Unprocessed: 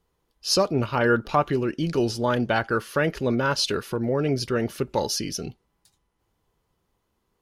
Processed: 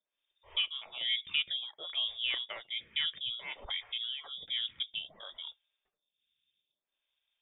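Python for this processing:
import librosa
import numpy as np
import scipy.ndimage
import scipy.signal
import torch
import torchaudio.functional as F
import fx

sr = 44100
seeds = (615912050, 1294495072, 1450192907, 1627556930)

y = fx.freq_invert(x, sr, carrier_hz=3600)
y = fx.stagger_phaser(y, sr, hz=0.59)
y = y * 10.0 ** (-8.5 / 20.0)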